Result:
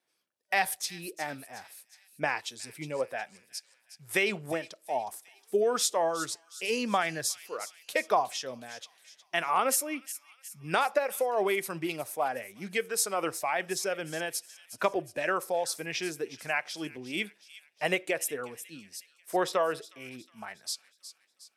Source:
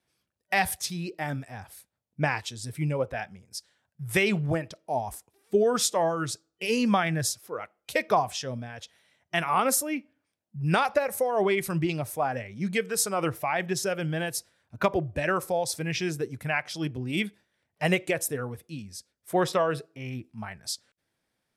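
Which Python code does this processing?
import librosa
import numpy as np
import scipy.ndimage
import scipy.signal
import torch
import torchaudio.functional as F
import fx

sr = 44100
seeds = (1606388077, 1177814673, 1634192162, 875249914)

y = scipy.signal.sosfilt(scipy.signal.butter(2, 330.0, 'highpass', fs=sr, output='sos'), x)
y = fx.echo_wet_highpass(y, sr, ms=363, feedback_pct=51, hz=3300.0, wet_db=-11.5)
y = F.gain(torch.from_numpy(y), -2.0).numpy()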